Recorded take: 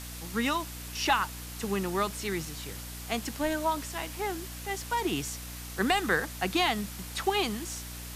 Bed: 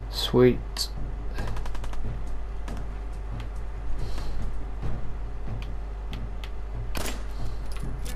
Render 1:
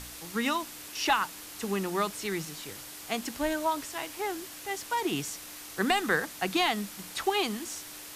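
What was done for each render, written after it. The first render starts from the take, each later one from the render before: de-hum 60 Hz, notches 4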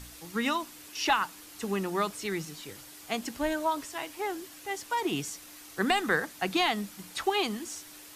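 noise reduction 6 dB, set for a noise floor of -45 dBFS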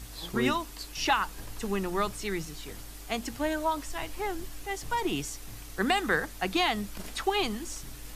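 add bed -13 dB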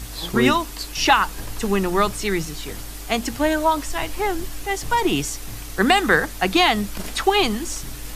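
trim +10 dB

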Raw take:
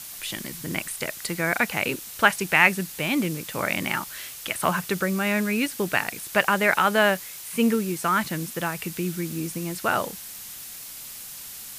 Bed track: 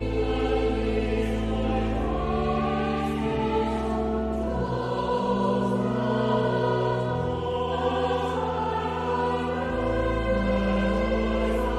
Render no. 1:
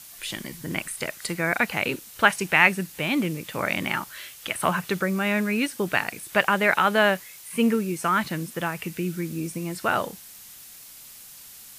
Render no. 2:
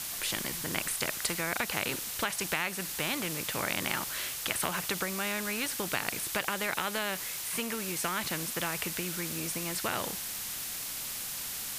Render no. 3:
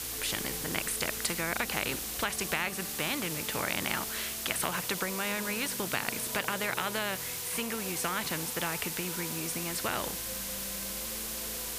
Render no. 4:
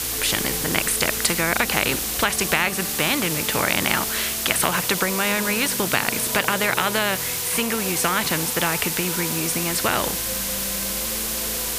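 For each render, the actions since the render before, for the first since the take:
noise print and reduce 6 dB
compression, threshold -22 dBFS, peak gain reduction 11 dB; spectrum-flattening compressor 2:1
add bed track -21.5 dB
trim +11 dB; peak limiter -1 dBFS, peak gain reduction 1 dB

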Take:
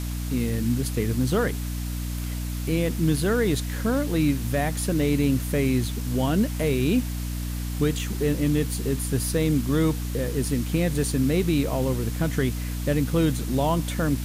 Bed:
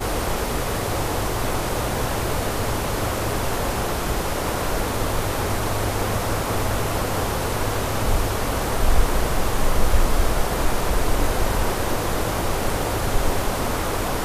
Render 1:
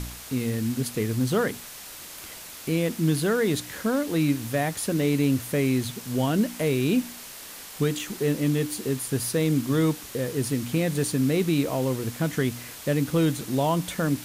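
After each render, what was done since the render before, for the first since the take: de-hum 60 Hz, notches 5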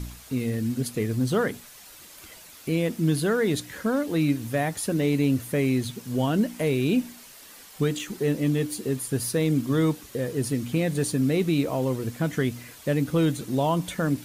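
noise reduction 8 dB, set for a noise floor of -42 dBFS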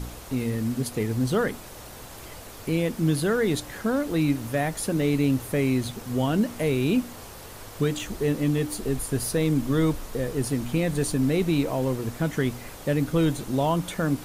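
add bed -20 dB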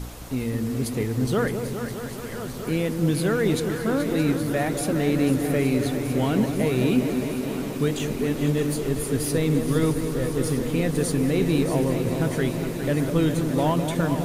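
backward echo that repeats 633 ms, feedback 75%, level -11.5 dB; on a send: delay with an opening low-pass 205 ms, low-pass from 750 Hz, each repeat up 2 oct, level -6 dB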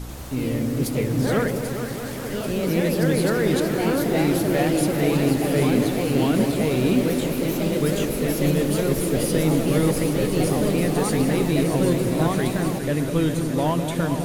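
feedback echo behind a high-pass 787 ms, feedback 78%, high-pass 2.7 kHz, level -9 dB; ever faster or slower copies 90 ms, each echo +2 st, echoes 2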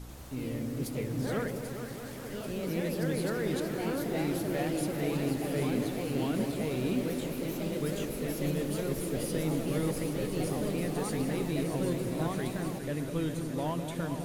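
trim -11 dB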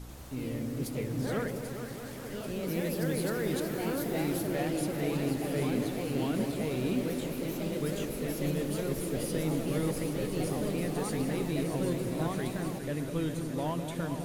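2.68–4.47 s: treble shelf 11 kHz +8 dB

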